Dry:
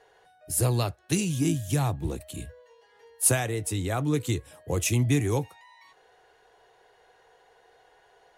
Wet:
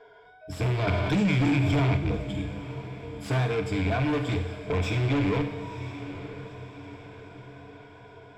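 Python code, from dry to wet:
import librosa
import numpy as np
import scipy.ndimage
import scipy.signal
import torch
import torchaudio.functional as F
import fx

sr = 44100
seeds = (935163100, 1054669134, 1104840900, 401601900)

y = fx.rattle_buzz(x, sr, strikes_db=-28.0, level_db=-23.0)
y = fx.ripple_eq(y, sr, per_octave=1.7, db=18)
y = fx.wow_flutter(y, sr, seeds[0], rate_hz=2.1, depth_cents=34.0)
y = 10.0 ** (-26.0 / 20.0) * np.tanh(y / 10.0 ** (-26.0 / 20.0))
y = fx.air_absorb(y, sr, metres=200.0)
y = fx.echo_diffused(y, sr, ms=951, feedback_pct=51, wet_db=-12.5)
y = fx.rev_schroeder(y, sr, rt60_s=1.0, comb_ms=31, drr_db=6.0)
y = fx.env_flatten(y, sr, amount_pct=70, at=(0.87, 1.97))
y = y * 10.0 ** (3.0 / 20.0)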